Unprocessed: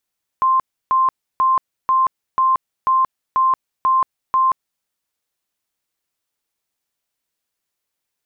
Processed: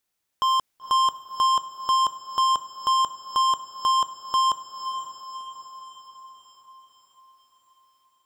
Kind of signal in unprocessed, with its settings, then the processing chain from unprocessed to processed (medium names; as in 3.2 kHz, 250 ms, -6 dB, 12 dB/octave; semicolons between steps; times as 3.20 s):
tone bursts 1.05 kHz, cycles 187, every 0.49 s, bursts 9, -12 dBFS
level rider gain up to 4 dB; hard clipper -20 dBFS; echo that smears into a reverb 513 ms, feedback 55%, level -10 dB